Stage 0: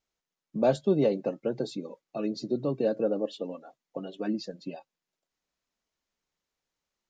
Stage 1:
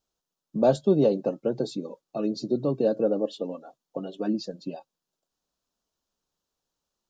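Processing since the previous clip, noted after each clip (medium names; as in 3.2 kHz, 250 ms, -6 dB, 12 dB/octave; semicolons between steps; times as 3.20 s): peaking EQ 2.1 kHz -14.5 dB 0.54 oct; trim +3.5 dB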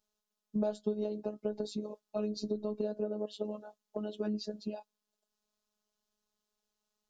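compression 10:1, threshold -28 dBFS, peak gain reduction 14 dB; robot voice 211 Hz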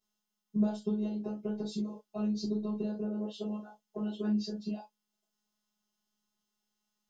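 gated-style reverb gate 90 ms falling, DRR -7 dB; trim -6.5 dB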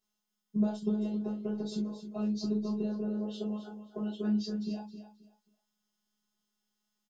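feedback delay 266 ms, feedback 23%, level -11 dB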